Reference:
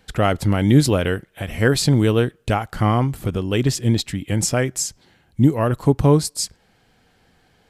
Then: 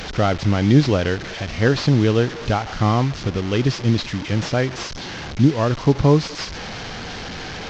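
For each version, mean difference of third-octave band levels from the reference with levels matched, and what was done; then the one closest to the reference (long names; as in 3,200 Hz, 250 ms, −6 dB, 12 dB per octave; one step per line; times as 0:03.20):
7.5 dB: linear delta modulator 32 kbit/s, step −25 dBFS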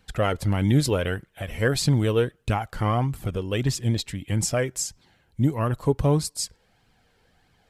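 1.0 dB: flanger 1.6 Hz, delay 0.7 ms, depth 1.6 ms, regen +44%
level −1 dB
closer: second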